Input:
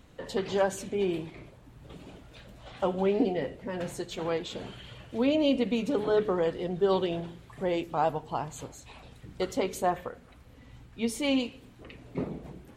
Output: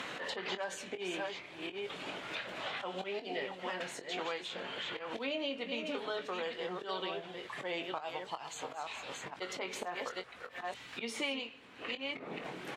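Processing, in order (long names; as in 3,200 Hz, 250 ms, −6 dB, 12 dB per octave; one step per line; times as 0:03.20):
delay that plays each chunk backwards 467 ms, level −8 dB
volume swells 190 ms
resonant band-pass 2,400 Hz, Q 0.74
double-tracking delay 22 ms −10 dB
multiband upward and downward compressor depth 100%
level +1.5 dB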